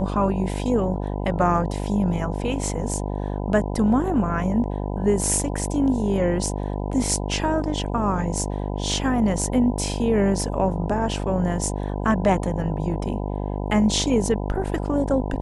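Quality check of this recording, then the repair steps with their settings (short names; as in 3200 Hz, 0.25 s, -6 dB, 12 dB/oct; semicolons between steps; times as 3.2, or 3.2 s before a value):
buzz 50 Hz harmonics 20 -27 dBFS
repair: de-hum 50 Hz, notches 20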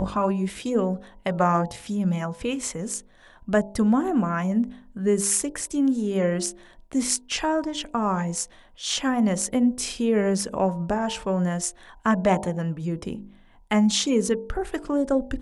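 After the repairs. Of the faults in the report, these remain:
none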